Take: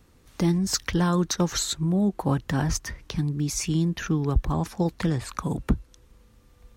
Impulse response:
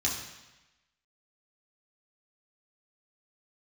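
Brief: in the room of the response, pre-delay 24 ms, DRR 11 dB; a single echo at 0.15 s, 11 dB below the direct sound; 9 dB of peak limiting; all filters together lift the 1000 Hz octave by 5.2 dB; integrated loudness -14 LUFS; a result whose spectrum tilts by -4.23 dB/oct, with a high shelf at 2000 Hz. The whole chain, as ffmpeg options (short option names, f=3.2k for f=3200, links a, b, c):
-filter_complex "[0:a]equalizer=f=1k:t=o:g=4.5,highshelf=f=2k:g=7.5,alimiter=limit=-13dB:level=0:latency=1,aecho=1:1:150:0.282,asplit=2[a][b];[1:a]atrim=start_sample=2205,adelay=24[c];[b][c]afir=irnorm=-1:irlink=0,volume=-18dB[d];[a][d]amix=inputs=2:normalize=0,volume=10dB"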